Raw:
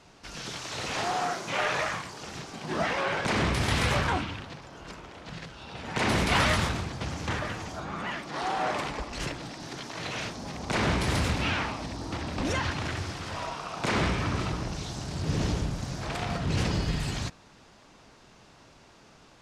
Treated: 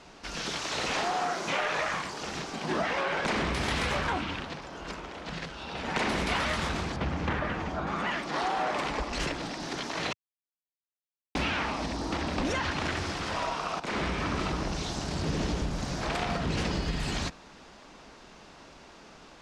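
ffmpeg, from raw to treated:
ffmpeg -i in.wav -filter_complex "[0:a]asettb=1/sr,asplit=3[link_01][link_02][link_03];[link_01]atrim=end=6.964[link_04];[link_02]atrim=start=6.96:end=7.87,asetpts=PTS-STARTPTS,afade=type=in:duration=0.004:curve=qsin,afade=type=out:start_time=0.906:duration=0.004:curve=qsin,bass=frequency=250:gain=4,treble=frequency=4000:gain=-14[link_05];[link_03]atrim=start=7.866[link_06];[link_04][link_05]acrossfade=duration=0.004:curve1=hsin:curve2=qsin[link_07];[link_07][link_06]acrossfade=duration=0.004:curve1=qsin:curve2=hsin,asplit=4[link_08][link_09][link_10][link_11];[link_08]atrim=end=10.13,asetpts=PTS-STARTPTS,afade=type=out:start_time=10.126:duration=0.004:curve=hsin[link_12];[link_09]atrim=start=10.13:end=11.35,asetpts=PTS-STARTPTS,volume=0[link_13];[link_10]atrim=start=11.35:end=13.8,asetpts=PTS-STARTPTS,afade=type=in:duration=0.004:curve=hsin,afade=type=out:start_time=2.446:duration=0.004:curve=hsin:silence=0.199526[link_14];[link_11]atrim=start=13.8,asetpts=PTS-STARTPTS,afade=type=in:duration=0.66:silence=0.199526[link_15];[link_12][link_13][link_14][link_15]concat=n=4:v=0:a=1,equalizer=frequency=110:width=2.4:gain=-12.5,acompressor=threshold=-31dB:ratio=6,highshelf=frequency=11000:gain=-12,volume=5dB" out.wav

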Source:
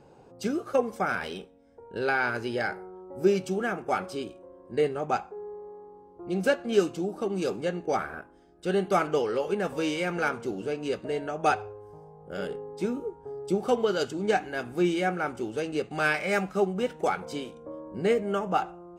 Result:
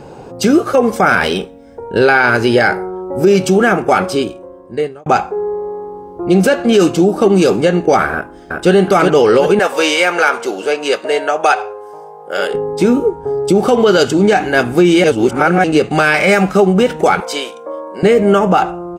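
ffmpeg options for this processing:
ffmpeg -i in.wav -filter_complex "[0:a]asplit=2[link_01][link_02];[link_02]afade=type=in:start_time=8.13:duration=0.01,afade=type=out:start_time=8.72:duration=0.01,aecho=0:1:370|740|1110|1480|1850:0.749894|0.262463|0.091862|0.0321517|0.0112531[link_03];[link_01][link_03]amix=inputs=2:normalize=0,asettb=1/sr,asplit=3[link_04][link_05][link_06];[link_04]atrim=end=9.594[link_07];[link_05]atrim=start=9.59:end=12.54,asetpts=PTS-STARTPTS,afade=type=in:duration=0.004:curve=qsin,afade=type=out:start_time=2.946:duration=0.004:curve=qsin,highpass=570[link_08];[link_06]atrim=start=12.536[link_09];[link_07][link_08]acrossfade=duration=0.004:curve1=hsin:curve2=qsin[link_10];[link_10][link_09]acrossfade=duration=0.004:curve1=qsin:curve2=hsin,asettb=1/sr,asplit=3[link_11][link_12][link_13];[link_11]atrim=end=17.204[link_14];[link_12]atrim=start=17.2:end=18.03,asetpts=PTS-STARTPTS,afade=type=in:duration=0.004:curve=qsin,afade=type=out:start_time=0.826:duration=0.004:curve=qsin,highpass=630[link_15];[link_13]atrim=start=18.026[link_16];[link_14][link_15]acrossfade=duration=0.004:curve1=hsin:curve2=qsin[link_17];[link_17][link_16]acrossfade=duration=0.004:curve1=qsin:curve2=hsin,asplit=4[link_18][link_19][link_20][link_21];[link_18]atrim=end=5.06,asetpts=PTS-STARTPTS,afade=type=out:start_time=3.94:duration=1.12[link_22];[link_19]atrim=start=5.06:end=15.042,asetpts=PTS-STARTPTS,afade=type=in:duration=0.004:curve=hsin[link_23];[link_20]atrim=start=15.038:end=15.642,asetpts=PTS-STARTPTS,areverse[link_24];[link_21]atrim=start=15.638[link_25];[link_22][link_23]concat=n=2:v=0:a=1[link_26];[link_26][link_24]acrossfade=duration=0.004:curve1=hsin:curve2=hsin[link_27];[link_27][link_25]acrossfade=duration=0.004:curve1=hsin:curve2=hsin,alimiter=level_in=21.5dB:limit=-1dB:release=50:level=0:latency=1,volume=-1dB" out.wav

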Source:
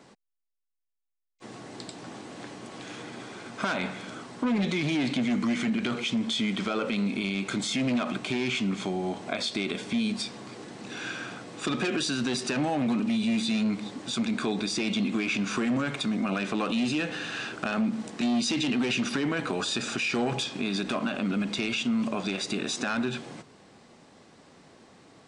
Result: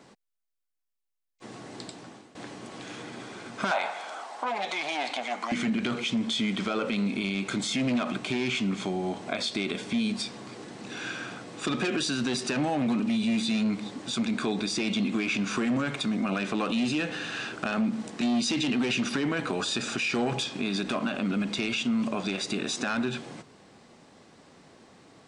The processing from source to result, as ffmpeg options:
ffmpeg -i in.wav -filter_complex "[0:a]asettb=1/sr,asplit=3[link_01][link_02][link_03];[link_01]atrim=end=3.714[link_04];[link_02]atrim=start=3.71:end=5.52,asetpts=PTS-STARTPTS,afade=type=in:duration=0.004:curve=qsin,afade=type=out:start_time=1.806:duration=0.004:curve=qsin,highpass=frequency=750:width_type=q:width=3.7[link_05];[link_03]atrim=start=5.516[link_06];[link_04][link_05]acrossfade=duration=0.004:curve1=hsin:curve2=qsin[link_07];[link_07][link_06]acrossfade=duration=0.004:curve1=qsin:curve2=hsin,asplit=2[link_08][link_09];[link_08]atrim=end=2.35,asetpts=PTS-STARTPTS,afade=type=out:start_time=1.85:duration=0.5:silence=0.149624[link_10];[link_09]atrim=start=2.35,asetpts=PTS-STARTPTS,afade=type=in:duration=0.004:curve=hsin:silence=0.149624[link_11];[link_10][link_11]concat=n=2:v=0:a=1" out.wav

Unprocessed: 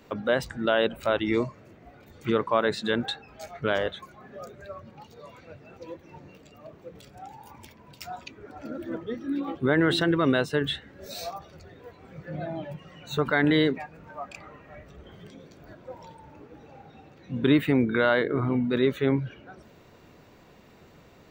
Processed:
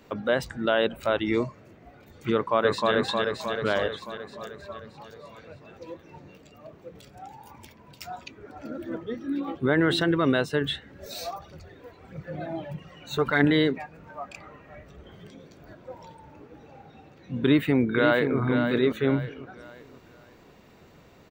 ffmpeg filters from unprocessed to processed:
ffmpeg -i in.wav -filter_complex "[0:a]asplit=2[link_01][link_02];[link_02]afade=type=in:start_time=2.33:duration=0.01,afade=type=out:start_time=2.93:duration=0.01,aecho=0:1:310|620|930|1240|1550|1860|2170|2480|2790|3100|3410:0.841395|0.546907|0.355489|0.231068|0.150194|0.0976263|0.0634571|0.0412471|0.0268106|0.0174269|0.0113275[link_03];[link_01][link_03]amix=inputs=2:normalize=0,asettb=1/sr,asplit=3[link_04][link_05][link_06];[link_04]atrim=end=10.914[link_07];[link_05]atrim=start=10.91:end=13.47,asetpts=PTS-STARTPTS,afade=type=in:duration=0.004:curve=qsin,afade=type=out:start_time=2.556:duration=0.004:curve=qsin,aphaser=in_gain=1:out_gain=1:delay=3.9:decay=0.42:speed=1.6:type=triangular[link_08];[link_06]atrim=start=13.466[link_09];[link_07][link_08]acrossfade=duration=0.004:curve1=hsin:curve2=qsin[link_10];[link_10][link_09]acrossfade=duration=0.004:curve1=qsin:curve2=hsin,asplit=2[link_11][link_12];[link_12]afade=type=in:start_time=17.4:duration=0.01,afade=type=out:start_time=18.39:duration=0.01,aecho=0:1:530|1060|1590|2120:0.446684|0.156339|0.0547187|0.0191516[link_13];[link_11][link_13]amix=inputs=2:normalize=0" out.wav

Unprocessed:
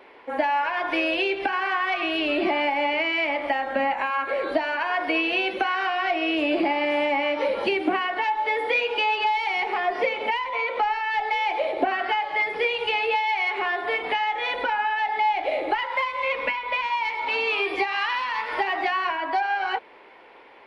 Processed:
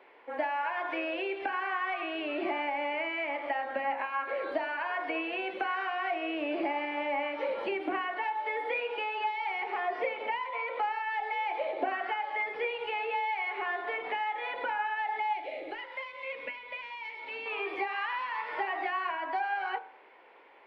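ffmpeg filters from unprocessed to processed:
ffmpeg -i in.wav -filter_complex "[0:a]asettb=1/sr,asplit=3[link_01][link_02][link_03];[link_01]atrim=end=15.334[link_04];[link_02]atrim=start=15.33:end=17.46,asetpts=PTS-STARTPTS,afade=type=in:duration=0.004:curve=qsin,afade=type=out:start_time=2.126:duration=0.004:curve=qsin,equalizer=frequency=1000:width_type=o:width=1.5:gain=-12[link_05];[link_03]atrim=start=17.456[link_06];[link_04][link_05]acrossfade=duration=0.004:curve1=hsin:curve2=qsin[link_07];[link_07][link_06]acrossfade=duration=0.004:curve1=qsin:curve2=hsin,acrossover=split=2700[link_08][link_09];[link_09]acompressor=threshold=-41dB:ratio=4:attack=1:release=60[link_10];[link_08][link_10]amix=inputs=2:normalize=0,bass=frequency=250:gain=-10,treble=frequency=4000:gain=-11,bandreject=frequency=45.21:width_type=h:width=4,bandreject=frequency=90.42:width_type=h:width=4,bandreject=frequency=135.63:width_type=h:width=4,bandreject=frequency=180.84:width_type=h:width=4,bandreject=frequency=226.05:width_type=h:width=4,bandreject=frequency=271.26:width_type=h:width=4,bandreject=frequency=316.47:width_type=h:width=4,bandreject=frequency=361.68:width_type=h:width=4,bandreject=frequency=406.89:width_type=h:width=4,bandreject=frequency=452.1:width_type=h:width=4,bandreject=frequency=497.31:width_type=h:width=4,bandreject=frequency=542.52:width_type=h:width=4,bandreject=frequency=587.73:width_type=h:width=4,bandreject=frequency=632.94:width_type=h:width=4,bandreject=frequency=678.15:width_type=h:width=4,bandreject=frequency=723.36:width_type=h:width=4,bandreject=frequency=768.57:width_type=h:width=4,bandreject=frequency=813.78:width_type=h:width=4,bandreject=frequency=858.99:width_type=h:width=4,bandreject=frequency=904.2:width_type=h:width=4,bandreject=frequency=949.41:width_type=h:width=4,bandreject=frequency=994.62:width_type=h:width=4,bandreject=frequency=1039.83:width_type=h:width=4,bandreject=frequency=1085.04:width_type=h:width=4,bandreject=frequency=1130.25:width_type=h:width=4,bandreject=frequency=1175.46:width_type=h:width=4,bandreject=frequency=1220.67:width_type=h:width=4,bandreject=frequency=1265.88:width_type=h:width=4,bandreject=frequency=1311.09:width_type=h:width=4,bandreject=frequency=1356.3:width_type=h:width=4,bandreject=frequency=1401.51:width_type=h:width=4,bandreject=frequency=1446.72:width_type=h:width=4,bandreject=frequency=1491.93:width_type=h:width=4,bandreject=frequency=1537.14:width_type=h:width=4,bandreject=frequency=1582.35:width_type=h:width=4,bandreject=frequency=1627.56:width_type=h:width=4,volume=-6.5dB" out.wav

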